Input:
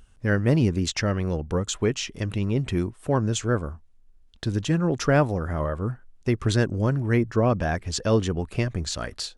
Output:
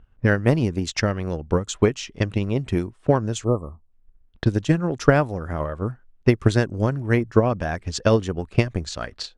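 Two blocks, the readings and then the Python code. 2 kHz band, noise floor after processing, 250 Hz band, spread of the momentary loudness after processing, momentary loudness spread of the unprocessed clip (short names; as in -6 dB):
+3.0 dB, -58 dBFS, +2.0 dB, 9 LU, 8 LU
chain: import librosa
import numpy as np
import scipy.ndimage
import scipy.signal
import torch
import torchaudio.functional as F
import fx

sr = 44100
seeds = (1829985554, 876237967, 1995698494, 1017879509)

y = fx.env_lowpass(x, sr, base_hz=1800.0, full_db=-21.5)
y = fx.transient(y, sr, attack_db=11, sustain_db=-2)
y = fx.spec_erase(y, sr, start_s=3.44, length_s=0.48, low_hz=1300.0, high_hz=7500.0)
y = y * librosa.db_to_amplitude(-2.0)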